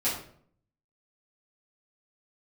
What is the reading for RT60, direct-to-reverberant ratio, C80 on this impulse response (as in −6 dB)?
0.55 s, −10.5 dB, 8.5 dB